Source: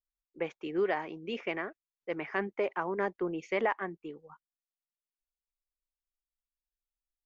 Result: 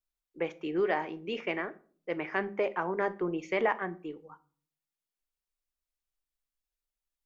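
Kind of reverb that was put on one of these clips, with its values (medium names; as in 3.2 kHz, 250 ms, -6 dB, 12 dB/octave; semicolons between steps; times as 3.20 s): simulated room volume 360 m³, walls furnished, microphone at 0.49 m; trim +1.5 dB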